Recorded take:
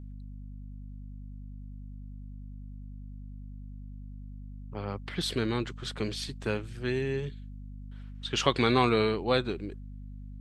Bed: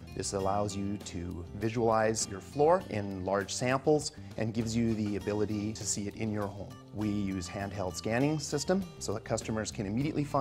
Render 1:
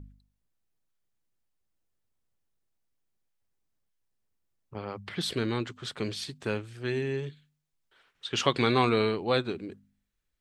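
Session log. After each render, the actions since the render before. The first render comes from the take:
hum removal 50 Hz, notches 5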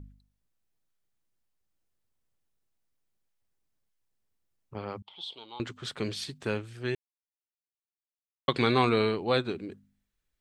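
0:05.02–0:05.60: pair of resonant band-passes 1,700 Hz, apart 1.9 octaves
0:06.95–0:08.48: silence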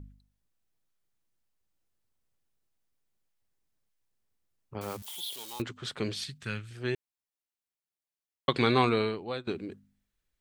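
0:04.81–0:05.62: spike at every zero crossing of −33.5 dBFS
0:06.24–0:06.71: flat-topped bell 510 Hz −13 dB 2.3 octaves
0:08.80–0:09.47: fade out, to −16 dB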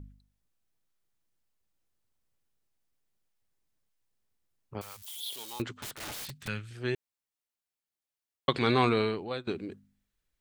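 0:04.81–0:05.26: guitar amp tone stack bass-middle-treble 10-0-10
0:05.78–0:06.48: wrap-around overflow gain 35 dB
0:08.54–0:09.31: transient designer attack −5 dB, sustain +3 dB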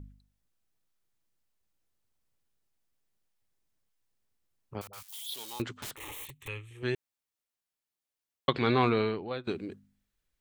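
0:04.87–0:05.34: all-pass dispersion highs, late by 61 ms, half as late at 540 Hz
0:05.96–0:06.83: phaser with its sweep stopped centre 990 Hz, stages 8
0:08.50–0:09.44: high-frequency loss of the air 130 metres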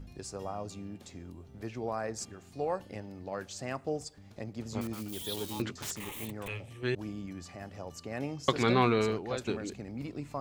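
mix in bed −8 dB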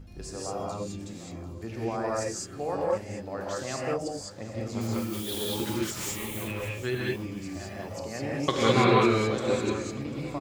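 repeating echo 744 ms, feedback 35%, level −17 dB
reverb whose tail is shaped and stops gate 230 ms rising, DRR −4.5 dB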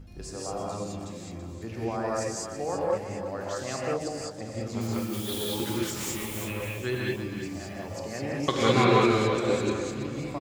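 single-tap delay 331 ms −9.5 dB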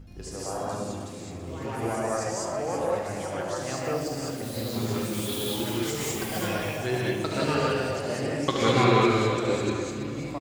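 delay with pitch and tempo change per echo 110 ms, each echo +3 semitones, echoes 2, each echo −6 dB
single-tap delay 72 ms −8.5 dB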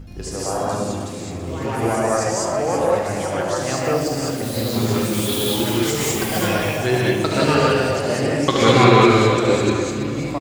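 level +9 dB
brickwall limiter −1 dBFS, peak gain reduction 2.5 dB

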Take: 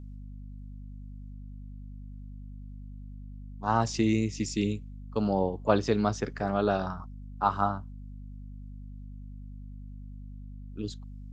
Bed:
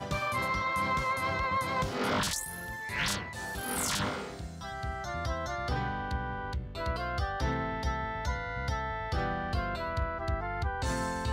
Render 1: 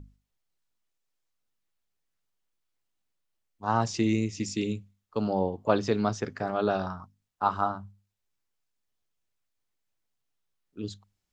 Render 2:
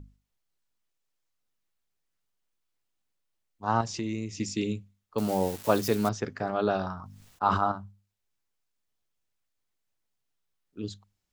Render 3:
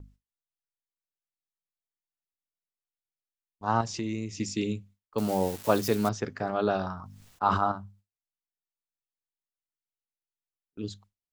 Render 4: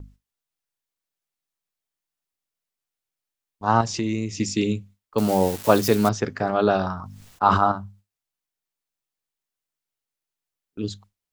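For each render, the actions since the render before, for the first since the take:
mains-hum notches 50/100/150/200/250 Hz
0:03.81–0:04.31: downward compressor 2 to 1, threshold −33 dBFS; 0:05.18–0:06.09: spike at every zero crossing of −27 dBFS; 0:06.93–0:07.72: level that may fall only so fast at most 54 dB per second
noise gate with hold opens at −47 dBFS
level +7 dB

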